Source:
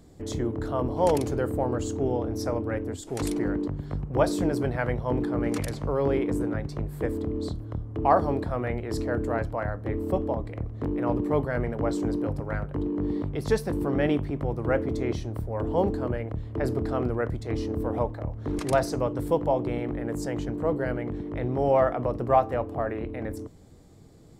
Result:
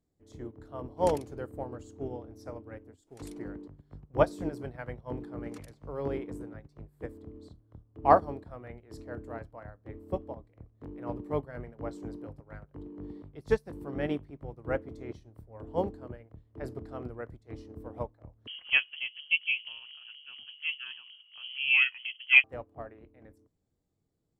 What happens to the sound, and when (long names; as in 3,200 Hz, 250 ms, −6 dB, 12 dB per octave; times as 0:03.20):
0:18.47–0:22.44: voice inversion scrambler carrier 3,200 Hz
whole clip: expander for the loud parts 2.5 to 1, over −36 dBFS; level +2 dB